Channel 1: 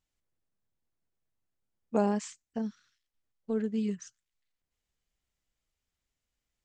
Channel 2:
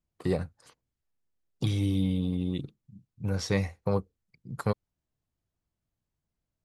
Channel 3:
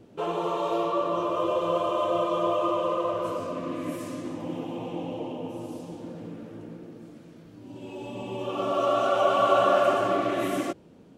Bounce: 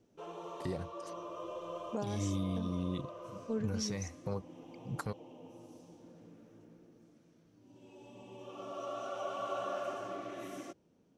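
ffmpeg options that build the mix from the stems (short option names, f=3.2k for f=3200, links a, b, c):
-filter_complex "[0:a]volume=-3.5dB[a];[1:a]alimiter=limit=-22dB:level=0:latency=1:release=264,adelay=400,volume=-0.5dB[b];[2:a]volume=-17dB[c];[a][b][c]amix=inputs=3:normalize=0,equalizer=f=5.9k:w=3.9:g=10,alimiter=level_in=2dB:limit=-24dB:level=0:latency=1:release=450,volume=-2dB"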